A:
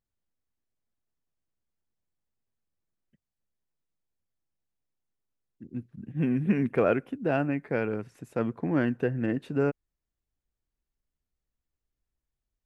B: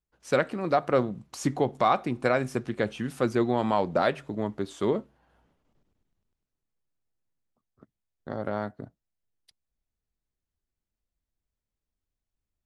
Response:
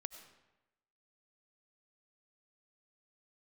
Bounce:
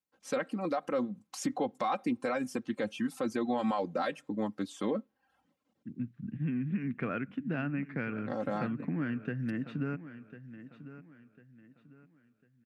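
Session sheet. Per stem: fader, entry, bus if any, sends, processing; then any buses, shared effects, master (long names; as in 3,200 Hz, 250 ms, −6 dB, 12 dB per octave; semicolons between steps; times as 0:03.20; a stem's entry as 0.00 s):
+3.0 dB, 0.25 s, no send, echo send −14 dB, low-pass filter 3,400 Hz 12 dB per octave; flat-topped bell 580 Hz −11 dB; downward compressor 5 to 1, threshold −34 dBFS, peak gain reduction 13.5 dB
−3.5 dB, 0.00 s, no send, no echo send, reverb reduction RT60 0.6 s; comb filter 3.8 ms, depth 74%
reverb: not used
echo: repeating echo 1,049 ms, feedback 33%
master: high-pass filter 110 Hz 24 dB per octave; brickwall limiter −22 dBFS, peak gain reduction 10 dB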